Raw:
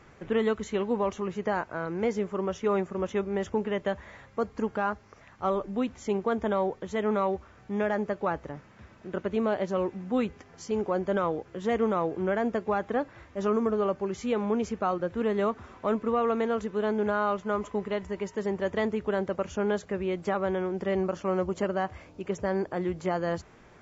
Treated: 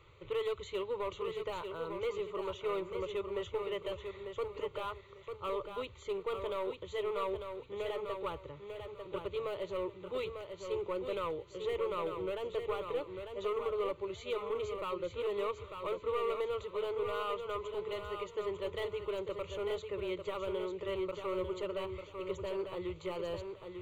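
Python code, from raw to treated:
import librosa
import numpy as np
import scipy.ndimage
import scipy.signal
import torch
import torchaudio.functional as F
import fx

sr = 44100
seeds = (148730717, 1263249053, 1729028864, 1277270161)

p1 = fx.graphic_eq_15(x, sr, hz=(100, 250, 4000), db=(8, -6, 12))
p2 = np.clip(p1, -10.0 ** (-24.5 / 20.0), 10.0 ** (-24.5 / 20.0))
p3 = fx.fixed_phaser(p2, sr, hz=1100.0, stages=8)
p4 = p3 + fx.echo_feedback(p3, sr, ms=897, feedback_pct=24, wet_db=-6.5, dry=0)
y = p4 * librosa.db_to_amplitude(-5.0)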